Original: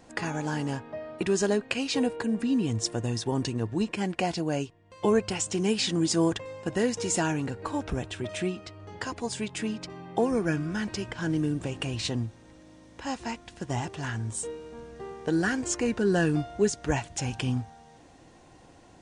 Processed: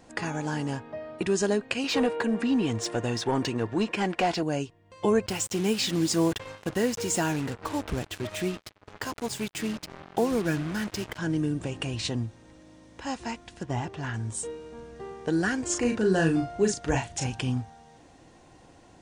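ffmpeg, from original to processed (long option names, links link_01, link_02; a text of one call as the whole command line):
ffmpeg -i in.wav -filter_complex "[0:a]asettb=1/sr,asplit=3[link_01][link_02][link_03];[link_01]atrim=end=1.844[link_04];[link_02]atrim=start=1.84:end=4.43,asetpts=PTS-STARTPTS,afade=type=in:duration=0.004:curve=qsin,afade=type=out:start_time=2.586:duration=0.004:curve=qsin,asplit=2[link_05][link_06];[link_06]highpass=frequency=720:poles=1,volume=16dB,asoftclip=type=tanh:threshold=-14.5dB[link_07];[link_05][link_07]amix=inputs=2:normalize=0,lowpass=frequency=2300:poles=1,volume=-6dB[link_08];[link_03]atrim=start=4.426[link_09];[link_04][link_08]acrossfade=duration=0.004:curve1=hsin:curve2=qsin[link_10];[link_10][link_09]acrossfade=duration=0.004:curve1=qsin:curve2=hsin,asettb=1/sr,asplit=3[link_11][link_12][link_13];[link_11]atrim=end=5.264[link_14];[link_12]atrim=start=5.26:end=11.18,asetpts=PTS-STARTPTS,afade=type=in:duration=0.004:curve=qsin,afade=type=out:start_time=5.916:duration=0.004:curve=qsin,acrusher=bits=5:mix=0:aa=0.5[link_15];[link_13]atrim=start=11.176[link_16];[link_14][link_15]acrossfade=duration=0.004:curve1=hsin:curve2=qsin[link_17];[link_17][link_16]acrossfade=duration=0.004:curve1=qsin:curve2=hsin,asettb=1/sr,asplit=3[link_18][link_19][link_20];[link_18]atrim=end=13.634[link_21];[link_19]atrim=start=13.63:end=14.14,asetpts=PTS-STARTPTS,afade=type=in:duration=0.004:curve=qsin,afade=type=out:start_time=0.506:duration=0.004:curve=qsin,aemphasis=mode=reproduction:type=50fm[link_22];[link_20]atrim=start=14.136[link_23];[link_21][link_22]acrossfade=duration=0.004:curve1=hsin:curve2=qsin[link_24];[link_24][link_23]acrossfade=duration=0.004:curve1=qsin:curve2=hsin,asettb=1/sr,asplit=3[link_25][link_26][link_27];[link_25]atrim=end=15.664[link_28];[link_26]atrim=start=15.66:end=17.27,asetpts=PTS-STARTPTS,afade=type=in:duration=0.004:curve=qsin,afade=type=out:start_time=1.606:duration=0.004:curve=qsin,asplit=2[link_29][link_30];[link_30]adelay=37,volume=-5dB[link_31];[link_29][link_31]amix=inputs=2:normalize=0,atrim=end_sample=71001[link_32];[link_27]atrim=start=17.266[link_33];[link_28][link_32]acrossfade=duration=0.004:curve1=hsin:curve2=qsin[link_34];[link_34][link_33]acrossfade=duration=0.004:curve1=qsin:curve2=hsin" out.wav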